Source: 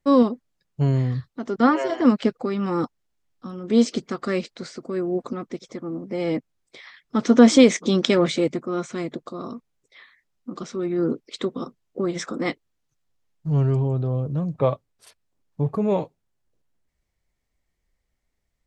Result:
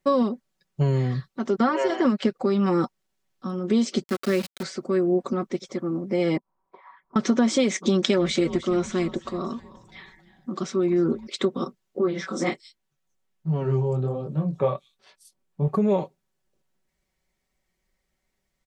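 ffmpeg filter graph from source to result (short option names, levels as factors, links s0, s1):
-filter_complex "[0:a]asettb=1/sr,asplit=3[s0][s1][s2];[s0]atrim=end=4.034[s3];[s1]atrim=start=4.03:end=4.63,asetpts=PTS-STARTPTS,afade=t=in:d=0.004:c=qsin,afade=t=out:st=0.596:d=0.004:c=qsin,equalizer=f=910:t=o:w=0.7:g=-14,bandreject=f=60:t=h:w=6,bandreject=f=120:t=h:w=6,bandreject=f=180:t=h:w=6,aeval=exprs='val(0)*gte(abs(val(0)),0.0224)':c=same[s4];[s2]atrim=start=4.626[s5];[s3][s4]acrossfade=d=0.004:c1=hsin:c2=qsin[s6];[s6][s5]acrossfade=d=0.004:c1=qsin:c2=hsin,asettb=1/sr,asplit=3[s7][s8][s9];[s7]atrim=end=6.374[s10];[s8]atrim=start=6.37:end=7.16,asetpts=PTS-STARTPTS,afade=t=in:d=0.004:c=qsin,afade=t=out:st=0.786:d=0.004:c=qsin,equalizer=f=130:w=2.8:g=-6.5,acompressor=threshold=0.00398:ratio=12:attack=3.2:release=140:knee=1:detection=peak,lowpass=f=1000:t=q:w=8.9[s11];[s9]atrim=start=7.156[s12];[s10][s11]acrossfade=d=0.004:c1=hsin:c2=qsin[s13];[s13][s12]acrossfade=d=0.004:c1=qsin:c2=hsin,asettb=1/sr,asplit=3[s14][s15][s16];[s14]atrim=end=7.724[s17];[s15]atrim=start=7.72:end=11.27,asetpts=PTS-STARTPTS,afade=t=in:d=0.004:c=qsin,afade=t=out:st=3.546:d=0.004:c=qsin,bandreject=f=510:w=16,asplit=5[s18][s19][s20][s21][s22];[s19]adelay=307,afreqshift=-130,volume=0.126[s23];[s20]adelay=614,afreqshift=-260,volume=0.0653[s24];[s21]adelay=921,afreqshift=-390,volume=0.0339[s25];[s22]adelay=1228,afreqshift=-520,volume=0.0178[s26];[s18][s23][s24][s25][s26]amix=inputs=5:normalize=0,atrim=end_sample=156555[s27];[s16]atrim=start=11.266[s28];[s17][s27]acrossfade=d=0.004:c1=hsin:c2=qsin[s29];[s29][s28]acrossfade=d=0.004:c1=qsin:c2=hsin,asettb=1/sr,asplit=3[s30][s31][s32];[s30]atrim=end=11.994[s33];[s31]atrim=start=11.99:end=15.68,asetpts=PTS-STARTPTS,afade=t=in:d=0.004:c=qsin,afade=t=out:st=3.686:d=0.004:c=qsin,flanger=delay=18:depth=6.4:speed=1.3,acrossover=split=4900[s34][s35];[s35]adelay=180[s36];[s34][s36]amix=inputs=2:normalize=0,atrim=end_sample=162729[s37];[s32]atrim=start=15.676[s38];[s33][s37]acrossfade=d=0.004:c1=hsin:c2=qsin[s39];[s39][s38]acrossfade=d=0.004:c1=qsin:c2=hsin,lowshelf=f=75:g=-10,aecho=1:1:5.3:0.56,acompressor=threshold=0.1:ratio=6,volume=1.33"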